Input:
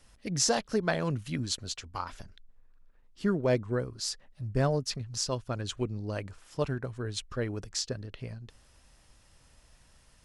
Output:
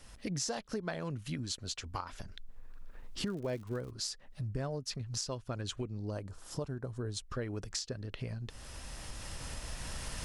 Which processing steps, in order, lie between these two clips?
camcorder AGC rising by 9.8 dB per second
0:06.10–0:07.26: parametric band 2,300 Hz −11 dB 1.2 octaves
downward compressor 3 to 1, threshold −44 dBFS, peak gain reduction 16.5 dB
0:03.25–0:03.89: surface crackle 160 per second −50 dBFS
level +5 dB

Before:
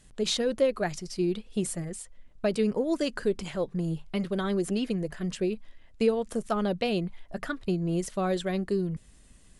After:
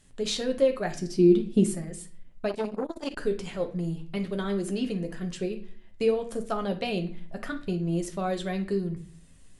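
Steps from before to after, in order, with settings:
0:00.95–0:01.65: parametric band 260 Hz +14 dB 1.4 octaves
convolution reverb, pre-delay 7 ms, DRR 4.5 dB
0:02.49–0:03.17: saturating transformer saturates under 620 Hz
level −2.5 dB

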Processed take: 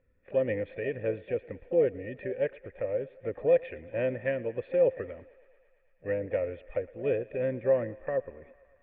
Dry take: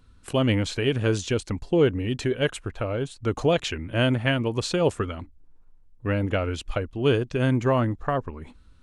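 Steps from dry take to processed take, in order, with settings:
pitch-shifted copies added +7 semitones −14 dB
formant resonators in series e
feedback echo with a high-pass in the loop 113 ms, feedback 81%, high-pass 390 Hz, level −21 dB
level +3.5 dB

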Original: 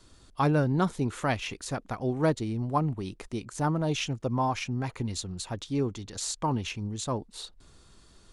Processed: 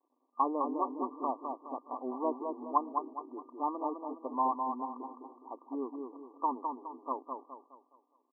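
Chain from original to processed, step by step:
slack as between gear wheels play −46 dBFS
low shelf with overshoot 780 Hz −7 dB, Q 1.5
brick-wall band-pass 240–1,200 Hz
on a send: repeating echo 208 ms, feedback 39%, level −5 dB

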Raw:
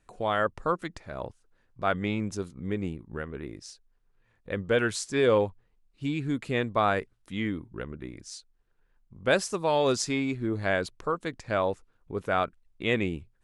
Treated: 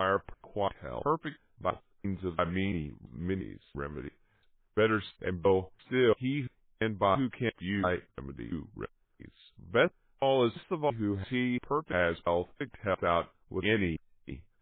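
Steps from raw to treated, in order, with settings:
slices reordered back to front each 313 ms, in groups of 2
wrong playback speed 48 kHz file played as 44.1 kHz
level −1.5 dB
MP3 16 kbit/s 8,000 Hz

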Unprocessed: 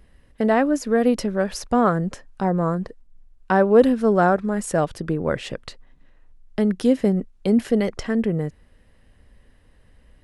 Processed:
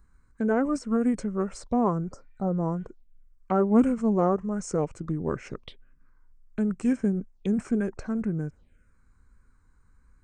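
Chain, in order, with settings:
phaser swept by the level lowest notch 560 Hz, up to 4,700 Hz, full sweep at −23.5 dBFS
healed spectral selection 0:02.08–0:02.84, 1,800–4,800 Hz both
formants moved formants −4 semitones
level −5.5 dB

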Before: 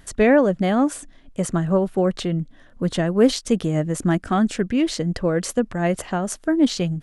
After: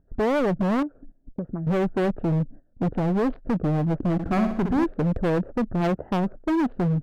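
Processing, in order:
adaptive Wiener filter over 41 samples
0:05.80–0:06.22: high-pass filter 170 Hz → 47 Hz 6 dB per octave
noise gate −42 dBFS, range −18 dB
de-essing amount 65%
low-pass filter 1,400 Hz 24 dB per octave
brickwall limiter −15 dBFS, peak gain reduction 10 dB
0:00.83–0:01.67: downward compressor 4 to 1, threshold −35 dBFS, peak gain reduction 13 dB
hard clipping −25.5 dBFS, distortion −8 dB
0:04.13–0:04.85: flutter between parallel walls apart 10.7 metres, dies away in 0.58 s
wow of a warped record 45 rpm, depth 100 cents
level +5.5 dB

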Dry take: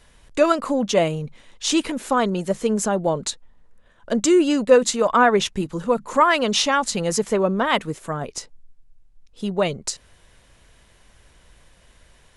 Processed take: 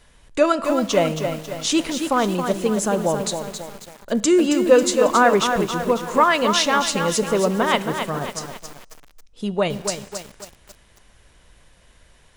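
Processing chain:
on a send at −16 dB: convolution reverb RT60 1.4 s, pre-delay 5 ms
on the sum: feedback echo at a low word length 272 ms, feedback 55%, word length 6 bits, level −6.5 dB

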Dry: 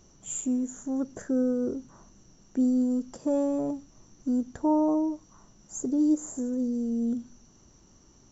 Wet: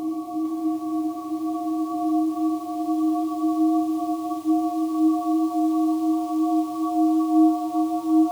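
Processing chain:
partials spread apart or drawn together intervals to 116%
high-pass filter 75 Hz 12 dB per octave
parametric band 360 Hz +3.5 dB 1.1 octaves
in parallel at −4 dB: floating-point word with a short mantissa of 2 bits
on the sum: phaser with its sweep stopped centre 320 Hz, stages 8
extreme stretch with random phases 35×, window 0.50 s, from 0:04.59
feedback echo at a low word length 455 ms, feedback 35%, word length 7 bits, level −12 dB
level −5 dB

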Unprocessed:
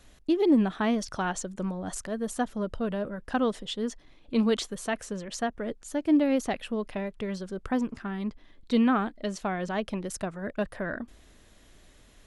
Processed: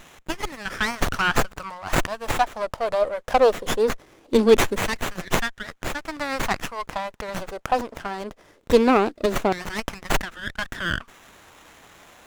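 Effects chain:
flat-topped bell 6,300 Hz +13.5 dB
auto-filter high-pass saw down 0.21 Hz 300–2,400 Hz
windowed peak hold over 9 samples
level +7 dB

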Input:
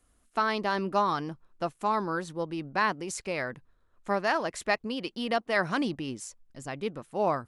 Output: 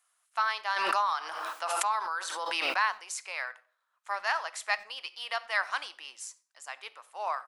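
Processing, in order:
high-pass filter 860 Hz 24 dB per octave
far-end echo of a speakerphone 90 ms, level −21 dB
convolution reverb RT60 0.50 s, pre-delay 18 ms, DRR 15.5 dB
0:00.76–0:02.80: background raised ahead of every attack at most 20 dB per second

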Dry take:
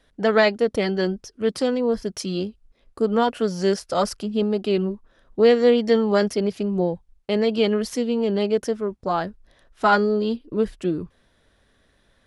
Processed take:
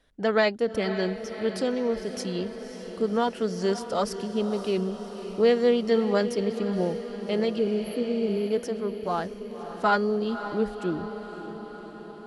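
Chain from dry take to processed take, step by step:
healed spectral selection 0:07.61–0:08.46, 560–10,000 Hz after
feedback delay with all-pass diffusion 554 ms, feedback 65%, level −11 dB
level −5 dB

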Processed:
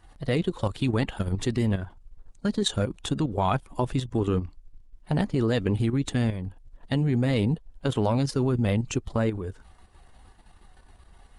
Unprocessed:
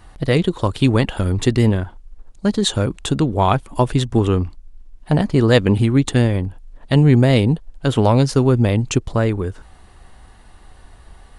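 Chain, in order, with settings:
spectral magnitudes quantised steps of 15 dB
output level in coarse steps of 9 dB
level −5 dB

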